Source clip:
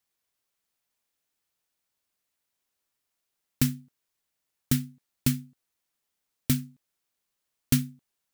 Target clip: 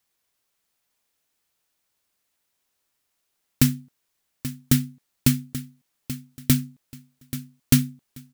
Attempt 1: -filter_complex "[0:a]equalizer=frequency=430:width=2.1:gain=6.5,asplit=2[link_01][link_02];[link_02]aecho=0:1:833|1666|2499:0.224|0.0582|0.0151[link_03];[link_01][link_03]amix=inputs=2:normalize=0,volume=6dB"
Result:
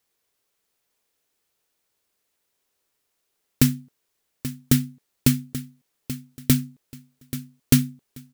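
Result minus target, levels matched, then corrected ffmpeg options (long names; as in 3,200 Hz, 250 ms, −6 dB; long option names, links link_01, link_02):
500 Hz band +4.5 dB
-filter_complex "[0:a]asplit=2[link_01][link_02];[link_02]aecho=0:1:833|1666|2499:0.224|0.0582|0.0151[link_03];[link_01][link_03]amix=inputs=2:normalize=0,volume=6dB"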